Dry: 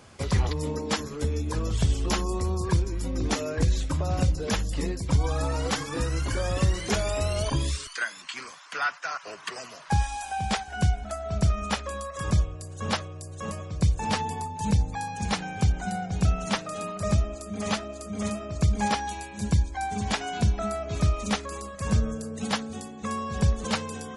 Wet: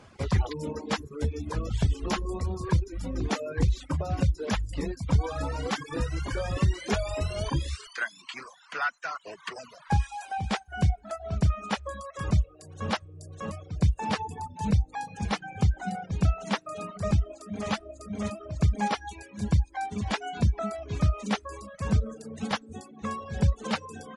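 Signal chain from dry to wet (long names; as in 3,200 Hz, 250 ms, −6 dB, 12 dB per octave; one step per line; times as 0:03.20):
reverb reduction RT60 0.6 s
low-pass filter 3,200 Hz 6 dB per octave
reverb reduction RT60 0.56 s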